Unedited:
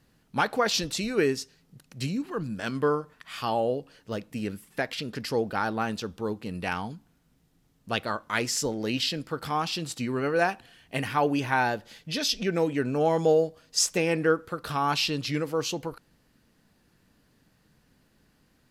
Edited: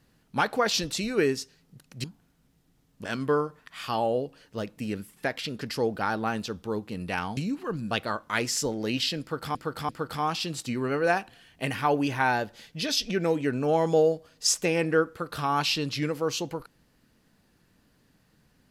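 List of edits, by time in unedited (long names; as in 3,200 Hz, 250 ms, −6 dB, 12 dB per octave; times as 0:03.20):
0:02.04–0:02.58: swap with 0:06.91–0:07.91
0:09.21–0:09.55: repeat, 3 plays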